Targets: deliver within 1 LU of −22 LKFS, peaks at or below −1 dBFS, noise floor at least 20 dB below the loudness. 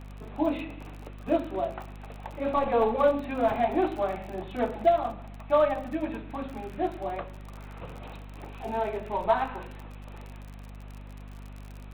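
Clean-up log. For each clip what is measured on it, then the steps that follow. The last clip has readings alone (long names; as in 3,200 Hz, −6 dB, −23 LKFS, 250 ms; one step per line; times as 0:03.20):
crackle rate 44 per second; mains hum 50 Hz; hum harmonics up to 250 Hz; level of the hum −41 dBFS; integrated loudness −28.5 LKFS; sample peak −12.0 dBFS; target loudness −22.0 LKFS
→ click removal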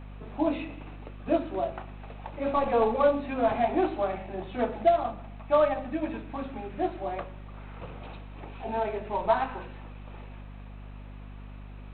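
crackle rate 0 per second; mains hum 50 Hz; hum harmonics up to 250 Hz; level of the hum −41 dBFS
→ hum removal 50 Hz, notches 5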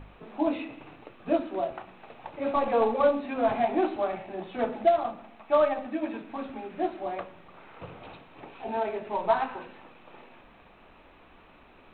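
mains hum none found; integrated loudness −28.5 LKFS; sample peak −12.0 dBFS; target loudness −22.0 LKFS
→ level +6.5 dB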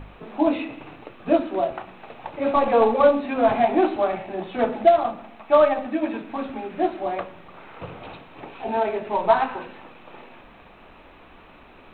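integrated loudness −22.0 LKFS; sample peak −5.5 dBFS; background noise floor −48 dBFS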